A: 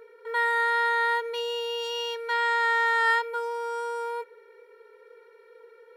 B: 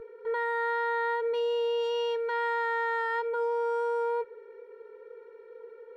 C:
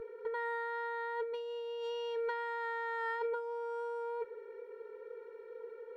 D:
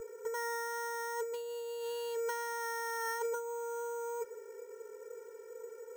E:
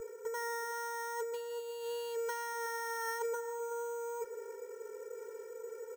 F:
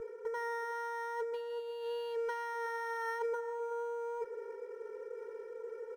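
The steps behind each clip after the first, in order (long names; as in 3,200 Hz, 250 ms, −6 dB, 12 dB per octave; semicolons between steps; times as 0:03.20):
spectral tilt −4.5 dB per octave; brickwall limiter −23 dBFS, peak gain reduction 7.5 dB
compressor whose output falls as the input rises −32 dBFS, ratio −0.5; level −4.5 dB
decimation without filtering 6×
reversed playback; upward compression, threshold −38 dBFS; reversed playback; slap from a distant wall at 64 metres, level −14 dB; level −1 dB
moving average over 6 samples; level +1 dB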